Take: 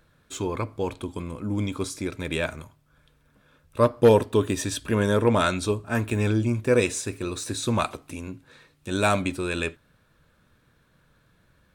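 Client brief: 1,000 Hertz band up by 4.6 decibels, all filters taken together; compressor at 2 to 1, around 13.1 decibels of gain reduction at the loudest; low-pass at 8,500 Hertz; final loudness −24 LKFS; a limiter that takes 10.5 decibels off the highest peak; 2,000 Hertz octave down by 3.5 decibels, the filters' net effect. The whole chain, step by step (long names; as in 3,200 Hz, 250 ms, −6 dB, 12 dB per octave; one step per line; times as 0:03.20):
low-pass filter 8,500 Hz
parametric band 1,000 Hz +8 dB
parametric band 2,000 Hz −8.5 dB
downward compressor 2 to 1, threshold −35 dBFS
level +14.5 dB
brickwall limiter −13 dBFS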